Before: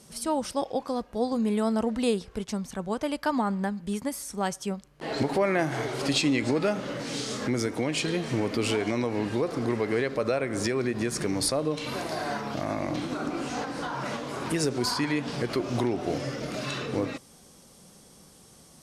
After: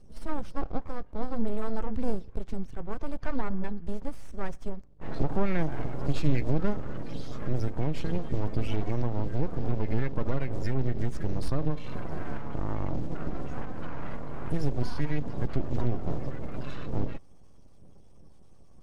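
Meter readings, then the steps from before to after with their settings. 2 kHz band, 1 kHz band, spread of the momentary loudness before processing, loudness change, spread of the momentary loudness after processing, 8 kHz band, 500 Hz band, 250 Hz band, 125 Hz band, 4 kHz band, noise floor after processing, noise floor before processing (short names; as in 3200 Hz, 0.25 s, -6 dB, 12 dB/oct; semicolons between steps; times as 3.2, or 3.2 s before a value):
-10.5 dB, -7.5 dB, 7 LU, -5.0 dB, 9 LU, under -20 dB, -8.0 dB, -5.5 dB, +3.5 dB, -16.5 dB, -48 dBFS, -54 dBFS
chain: bin magnitudes rounded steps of 30 dB; half-wave rectifier; RIAA curve playback; gain -5 dB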